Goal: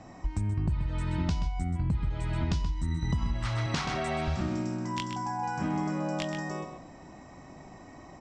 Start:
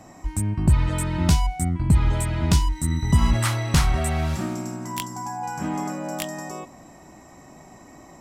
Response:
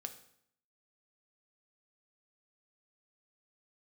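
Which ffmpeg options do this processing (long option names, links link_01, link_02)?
-filter_complex "[0:a]asettb=1/sr,asplit=3[link_01][link_02][link_03];[link_01]atrim=end=3.664[link_04];[link_02]atrim=start=3.66:end=4.28,asetpts=PTS-STARTPTS,afade=type=in:duration=0.004:curve=qsin,afade=type=out:start_time=0.616:duration=0.004:curve=qsin,highpass=230[link_05];[link_03]atrim=start=4.276[link_06];[link_04][link_05]acrossfade=duration=0.004:curve1=hsin:curve2=qsin[link_07];[link_07][link_06]acrossfade=duration=0.004:curve1=qsin:curve2=hsin,asplit=2[link_08][link_09];[link_09]adelay=128.3,volume=-8dB,highshelf=frequency=4000:gain=-2.89[link_10];[link_08][link_10]amix=inputs=2:normalize=0,asplit=2[link_11][link_12];[1:a]atrim=start_sample=2205,lowshelf=frequency=140:gain=11.5[link_13];[link_12][link_13]afir=irnorm=-1:irlink=0,volume=-6.5dB[link_14];[link_11][link_14]amix=inputs=2:normalize=0,acompressor=threshold=-20dB:ratio=16,lowpass=frequency=5900:width=0.5412,lowpass=frequency=5900:width=1.3066,volume=-5dB"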